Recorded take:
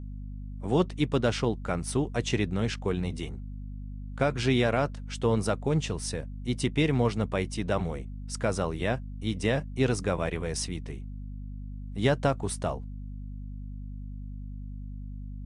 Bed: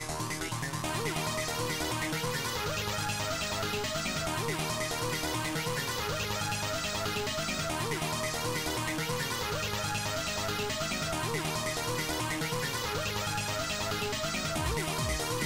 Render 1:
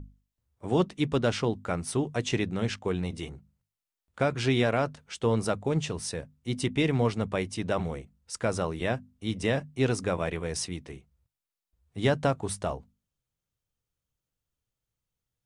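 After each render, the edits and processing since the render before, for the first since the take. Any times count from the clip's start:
mains-hum notches 50/100/150/200/250 Hz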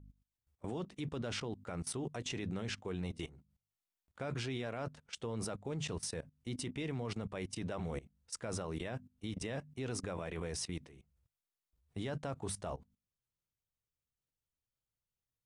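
output level in coarse steps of 19 dB
brickwall limiter −29.5 dBFS, peak gain reduction 4.5 dB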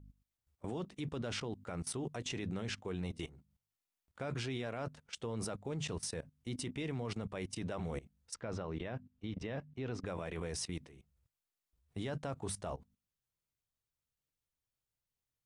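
0:08.34–0:10.06: high-frequency loss of the air 180 metres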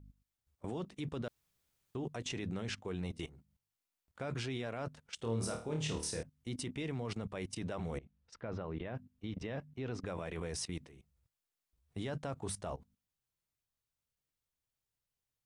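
0:01.28–0:01.95: fill with room tone
0:05.16–0:06.23: flutter between parallel walls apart 4.5 metres, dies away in 0.38 s
0:07.98–0:08.95: high-frequency loss of the air 180 metres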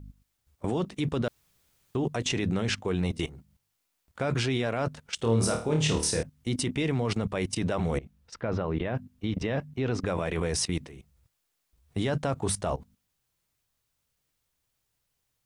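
level +11.5 dB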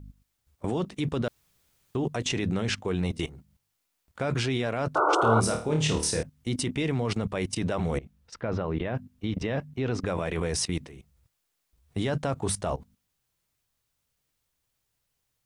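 0:04.95–0:05.41: sound drawn into the spectrogram noise 290–1,500 Hz −23 dBFS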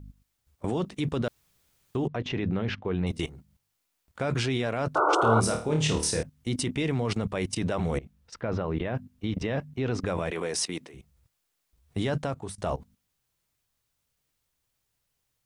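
0:02.07–0:03.07: high-frequency loss of the air 280 metres
0:10.31–0:10.94: high-pass filter 260 Hz
0:12.18–0:12.58: fade out, to −18.5 dB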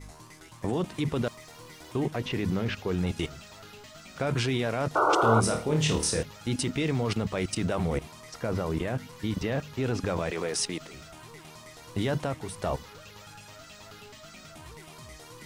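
mix in bed −15 dB

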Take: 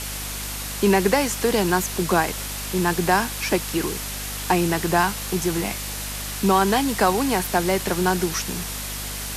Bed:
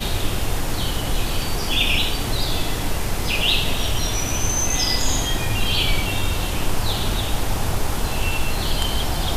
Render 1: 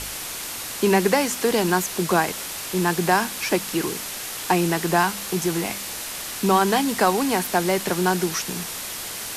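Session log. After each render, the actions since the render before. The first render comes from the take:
hum removal 50 Hz, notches 5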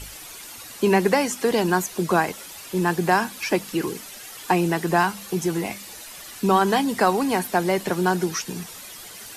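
broadband denoise 11 dB, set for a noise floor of −32 dBFS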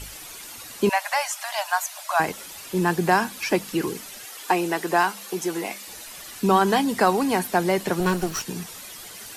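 0:00.89–0:02.20: linear-phase brick-wall high-pass 570 Hz
0:04.25–0:05.88: high-pass filter 320 Hz
0:08.00–0:08.42: lower of the sound and its delayed copy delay 0.71 ms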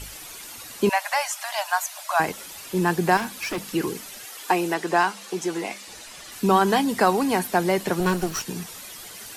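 0:03.17–0:03.63: hard clipping −25 dBFS
0:04.74–0:06.32: low-pass filter 8,700 Hz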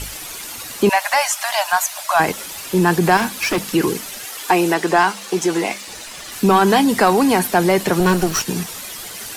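leveller curve on the samples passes 1
in parallel at −1 dB: brickwall limiter −15.5 dBFS, peak gain reduction 9.5 dB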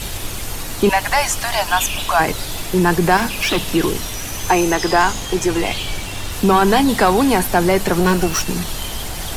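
mix in bed −5.5 dB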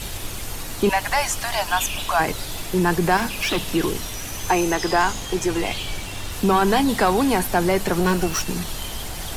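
level −4.5 dB

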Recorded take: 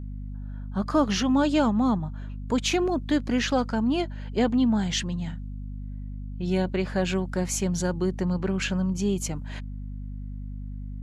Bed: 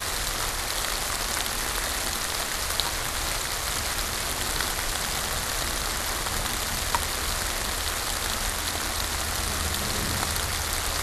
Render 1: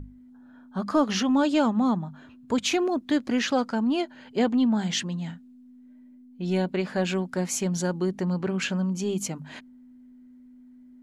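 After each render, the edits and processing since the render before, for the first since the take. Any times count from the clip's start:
mains-hum notches 50/100/150/200 Hz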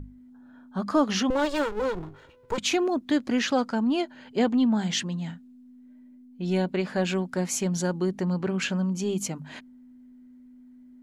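0:01.30–0:02.58: lower of the sound and its delayed copy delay 2.1 ms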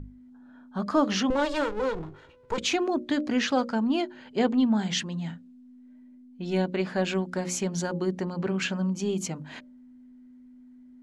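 Bessel low-pass filter 7,500 Hz, order 2
mains-hum notches 60/120/180/240/300/360/420/480/540/600 Hz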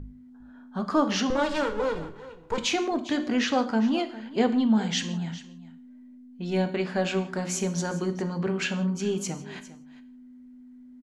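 single-tap delay 404 ms −17 dB
reverb whose tail is shaped and stops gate 200 ms falling, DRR 8.5 dB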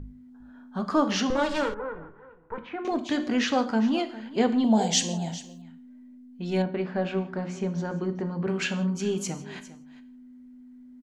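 0:01.74–0:02.85: transistor ladder low-pass 1,900 Hz, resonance 40%
0:04.64–0:05.62: drawn EQ curve 240 Hz 0 dB, 710 Hz +13 dB, 1,300 Hz −8 dB, 3,500 Hz +3 dB, 8,700 Hz +13 dB
0:06.62–0:08.48: head-to-tape spacing loss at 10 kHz 27 dB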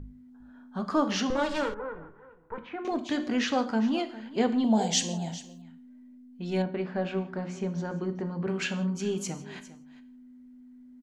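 level −2.5 dB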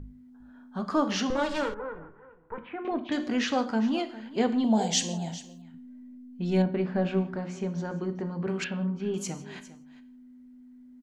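0:01.99–0:03.12: low-pass filter 3,200 Hz 24 dB per octave
0:05.74–0:07.36: low-shelf EQ 280 Hz +8 dB
0:08.64–0:09.14: high-frequency loss of the air 360 metres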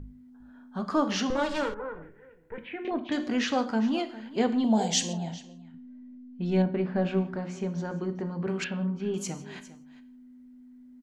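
0:02.02–0:02.91: drawn EQ curve 530 Hz 0 dB, 1,200 Hz −14 dB, 1,800 Hz +6 dB
0:05.13–0:06.96: high-frequency loss of the air 94 metres

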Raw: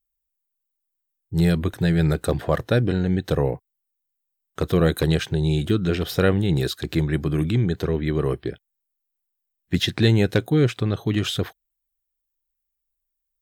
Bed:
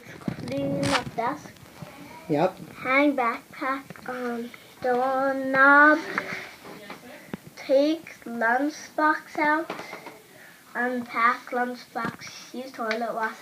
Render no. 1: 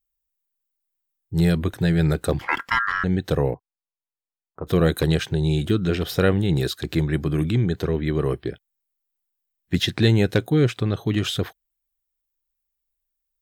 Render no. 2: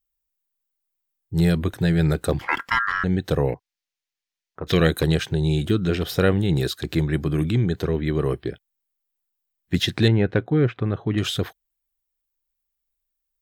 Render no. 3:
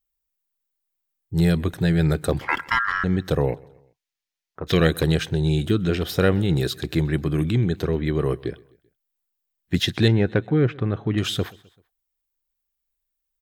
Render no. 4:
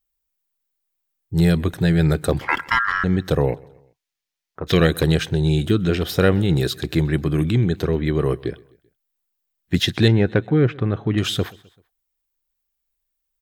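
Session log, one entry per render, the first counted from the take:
0:02.39–0:03.04: ring modulation 1,500 Hz; 0:03.54–0:04.67: transistor ladder low-pass 1,200 Hz, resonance 45%
0:03.48–0:04.87: flat-topped bell 3,300 Hz +10.5 dB 2.3 octaves; 0:10.08–0:11.18: Chebyshev low-pass filter 1,800 Hz
repeating echo 129 ms, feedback 50%, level −24 dB
level +2.5 dB; brickwall limiter −2 dBFS, peak gain reduction 2 dB

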